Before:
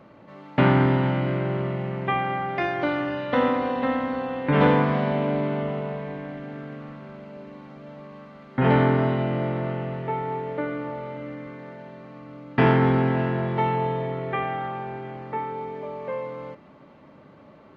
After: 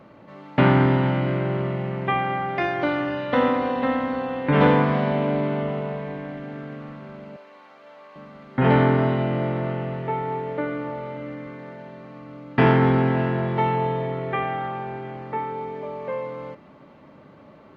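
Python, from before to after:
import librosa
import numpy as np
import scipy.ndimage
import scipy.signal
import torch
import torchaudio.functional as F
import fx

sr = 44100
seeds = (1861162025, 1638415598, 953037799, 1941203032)

y = fx.highpass(x, sr, hz=690.0, slope=12, at=(7.36, 8.16))
y = y * librosa.db_to_amplitude(1.5)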